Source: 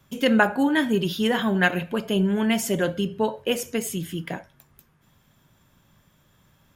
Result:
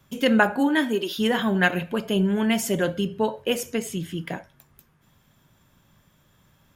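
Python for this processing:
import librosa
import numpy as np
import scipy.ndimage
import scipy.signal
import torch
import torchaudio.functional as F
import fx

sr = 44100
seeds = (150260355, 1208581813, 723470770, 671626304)

y = fx.highpass(x, sr, hz=fx.line((0.59, 140.0), (1.17, 350.0)), slope=24, at=(0.59, 1.17), fade=0.02)
y = fx.high_shelf(y, sr, hz=10000.0, db=-11.5, at=(3.75, 4.21))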